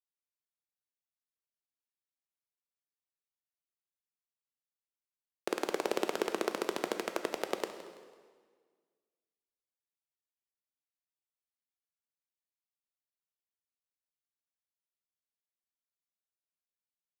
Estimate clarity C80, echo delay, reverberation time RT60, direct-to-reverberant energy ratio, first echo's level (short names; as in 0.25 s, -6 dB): 9.0 dB, 0.166 s, 1.6 s, 7.0 dB, -16.5 dB